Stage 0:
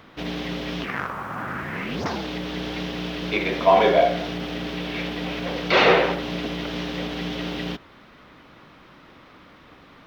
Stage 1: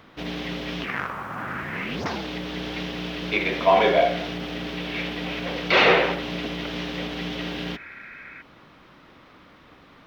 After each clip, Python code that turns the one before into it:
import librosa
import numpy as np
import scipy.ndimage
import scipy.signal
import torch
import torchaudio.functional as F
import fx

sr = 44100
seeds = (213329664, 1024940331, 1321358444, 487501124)

y = fx.spec_repair(x, sr, seeds[0], start_s=7.48, length_s=0.91, low_hz=1300.0, high_hz=2600.0, source='before')
y = fx.dynamic_eq(y, sr, hz=2400.0, q=1.1, threshold_db=-37.0, ratio=4.0, max_db=4)
y = F.gain(torch.from_numpy(y), -2.0).numpy()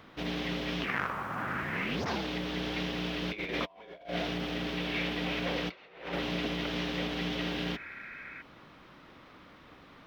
y = fx.over_compress(x, sr, threshold_db=-28.0, ratio=-0.5)
y = F.gain(torch.from_numpy(y), -6.0).numpy()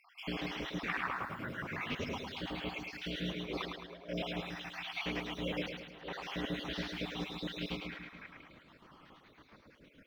y = fx.spec_dropout(x, sr, seeds[1], share_pct=63)
y = fx.echo_split(y, sr, split_hz=340.0, low_ms=143, high_ms=107, feedback_pct=52, wet_db=-5.0)
y = F.gain(torch.from_numpy(y), -2.5).numpy()